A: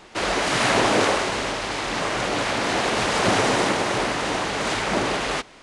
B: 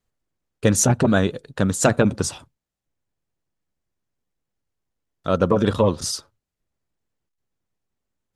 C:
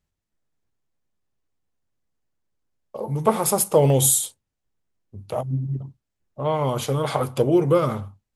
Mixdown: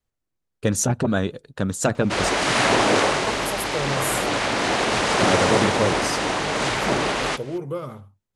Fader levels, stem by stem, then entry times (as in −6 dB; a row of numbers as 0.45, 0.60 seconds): +1.0, −4.0, −11.0 decibels; 1.95, 0.00, 0.00 seconds